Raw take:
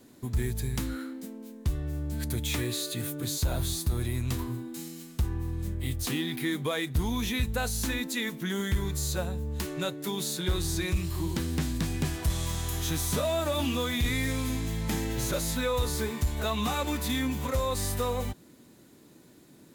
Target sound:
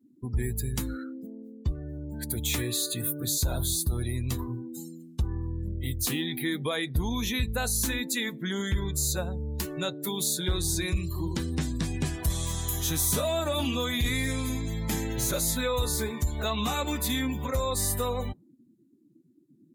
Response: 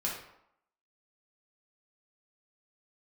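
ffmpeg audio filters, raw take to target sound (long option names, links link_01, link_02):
-filter_complex "[0:a]asettb=1/sr,asplit=3[link_01][link_02][link_03];[link_01]atrim=end=1.724[link_04];[link_02]atrim=start=1.72:end=2.37,asetpts=PTS-STARTPTS,afade=type=in:duration=0.004:curve=qsin,afade=type=out:start_time=0.646:duration=0.004:curve=qsin,highpass=frequency=140:poles=1[link_05];[link_03]atrim=start=2.366[link_06];[link_04][link_05]acrossfade=duration=0.004:curve1=hsin:curve2=qsin[link_07];[link_07][link_06]acrossfade=duration=0.004:curve1=qsin:curve2=hsin,afftdn=noise_reduction=35:noise_floor=-43,highshelf=frequency=6100:gain=11"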